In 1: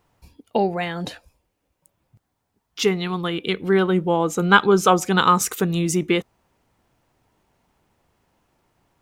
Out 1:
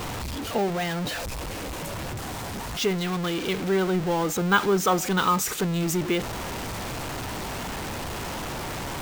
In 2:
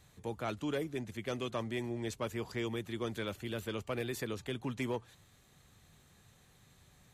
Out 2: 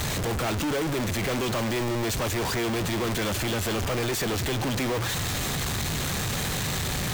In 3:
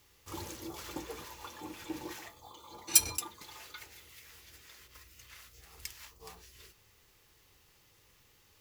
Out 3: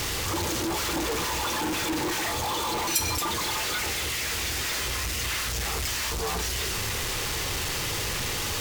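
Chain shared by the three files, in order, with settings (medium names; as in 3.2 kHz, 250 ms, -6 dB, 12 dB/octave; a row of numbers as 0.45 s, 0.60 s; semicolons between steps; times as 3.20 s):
jump at every zero crossing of -17.5 dBFS; careless resampling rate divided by 2×, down filtered, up hold; normalise loudness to -27 LUFS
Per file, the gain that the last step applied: -8.5 dB, -4.5 dB, -4.5 dB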